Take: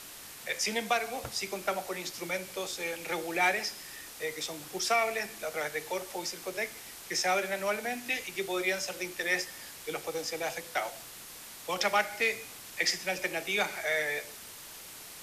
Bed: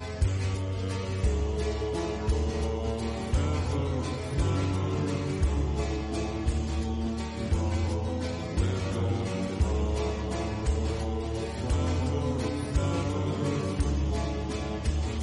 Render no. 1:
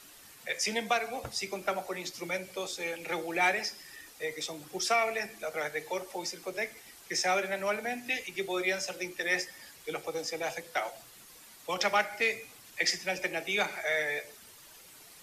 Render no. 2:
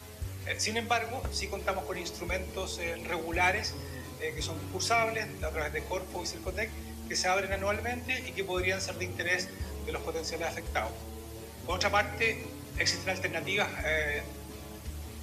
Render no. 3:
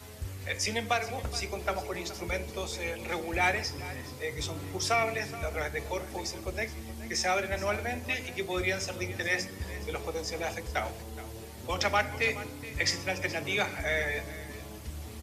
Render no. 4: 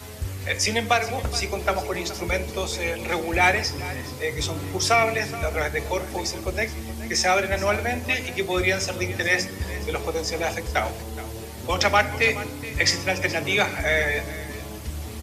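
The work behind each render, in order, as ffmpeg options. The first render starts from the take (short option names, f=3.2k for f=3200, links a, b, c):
-af "afftdn=nr=9:nf=-47"
-filter_complex "[1:a]volume=-12.5dB[a];[0:a][a]amix=inputs=2:normalize=0"
-af "aecho=1:1:422:0.158"
-af "volume=8dB"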